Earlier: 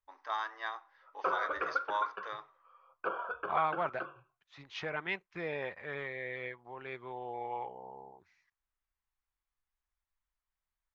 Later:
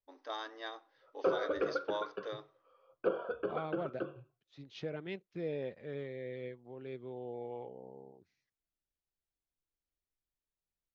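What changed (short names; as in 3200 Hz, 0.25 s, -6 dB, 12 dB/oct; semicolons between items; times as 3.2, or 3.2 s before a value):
second voice -7.0 dB; master: add graphic EQ 125/250/500/1000/2000/4000 Hz +8/+11/+8/-11/-6/+4 dB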